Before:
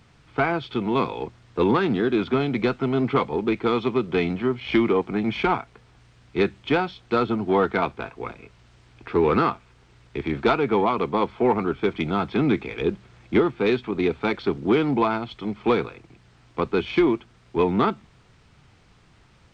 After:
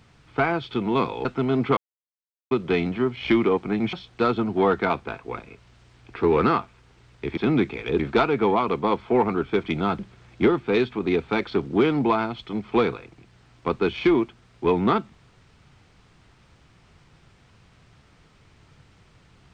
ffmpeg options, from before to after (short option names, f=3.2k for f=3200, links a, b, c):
-filter_complex "[0:a]asplit=8[a][b][c][d][e][f][g][h];[a]atrim=end=1.252[i];[b]atrim=start=2.688:end=3.21,asetpts=PTS-STARTPTS,afade=t=out:st=0.518:d=0.004:c=hsin[j];[c]atrim=start=3.21:end=3.95,asetpts=PTS-STARTPTS,volume=0[k];[d]atrim=start=3.95:end=5.372,asetpts=PTS-STARTPTS,afade=t=in:d=0.004:c=hsin[l];[e]atrim=start=6.848:end=10.292[m];[f]atrim=start=12.288:end=12.912[n];[g]atrim=start=10.288:end=12.292[o];[h]atrim=start=12.908[p];[j][k][l]concat=n=3:v=0:a=1[q];[i][q]acrossfade=d=0.004:c1=hsin:c2=hsin[r];[r][m]acrossfade=d=0.004:c1=hsin:c2=hsin[s];[s][n]acrossfade=d=0.004:c1=hsin:c2=hsin[t];[t][o]acrossfade=d=0.004:c1=hsin:c2=hsin[u];[u][p]acrossfade=d=0.004:c1=hsin:c2=hsin"